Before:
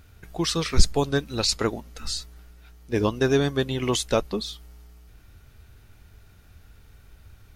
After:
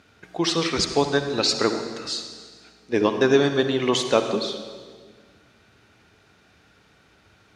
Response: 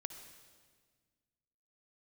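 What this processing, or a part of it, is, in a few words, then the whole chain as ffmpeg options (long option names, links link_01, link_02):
supermarket ceiling speaker: -filter_complex "[0:a]highpass=220,lowpass=5600[link_01];[1:a]atrim=start_sample=2205[link_02];[link_01][link_02]afir=irnorm=-1:irlink=0,volume=7dB"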